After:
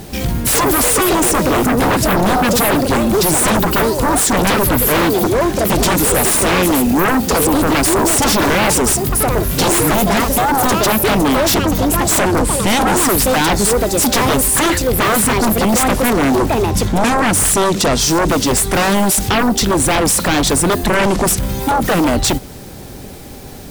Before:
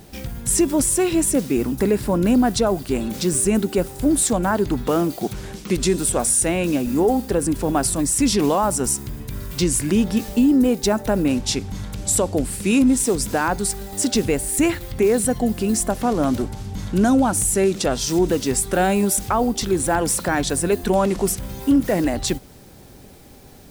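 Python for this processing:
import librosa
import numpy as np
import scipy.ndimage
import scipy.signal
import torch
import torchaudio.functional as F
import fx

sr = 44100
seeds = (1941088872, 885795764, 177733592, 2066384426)

y = fx.echo_pitch(x, sr, ms=104, semitones=5, count=2, db_per_echo=-6.0)
y = fx.fold_sine(y, sr, drive_db=13, ceiling_db=-5.5)
y = y * librosa.db_to_amplitude(-4.5)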